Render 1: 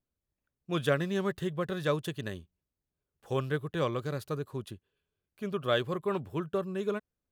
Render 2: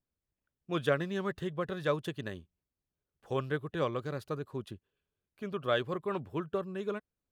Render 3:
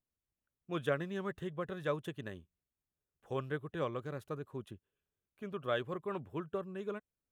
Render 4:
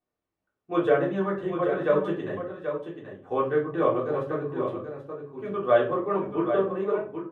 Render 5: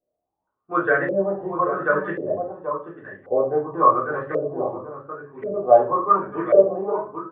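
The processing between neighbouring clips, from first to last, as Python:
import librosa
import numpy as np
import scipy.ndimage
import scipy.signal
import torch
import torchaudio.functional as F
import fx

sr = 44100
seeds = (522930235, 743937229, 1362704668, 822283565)

y1 = fx.high_shelf(x, sr, hz=5600.0, db=-9.5)
y1 = fx.hpss(y1, sr, part='harmonic', gain_db=-4)
y2 = fx.peak_eq(y1, sr, hz=4600.0, db=-10.5, octaves=0.43)
y2 = F.gain(torch.from_numpy(y2), -4.5).numpy()
y3 = fx.bandpass_q(y2, sr, hz=650.0, q=0.64)
y3 = y3 + 10.0 ** (-8.0 / 20.0) * np.pad(y3, (int(782 * sr / 1000.0), 0))[:len(y3)]
y3 = fx.room_shoebox(y3, sr, seeds[0], volume_m3=210.0, walls='furnished', distance_m=3.5)
y3 = F.gain(torch.from_numpy(y3), 6.5).numpy()
y4 = fx.filter_lfo_lowpass(y3, sr, shape='saw_up', hz=0.92, low_hz=530.0, high_hz=2000.0, q=7.8)
y4 = F.gain(torch.from_numpy(y4), -1.5).numpy()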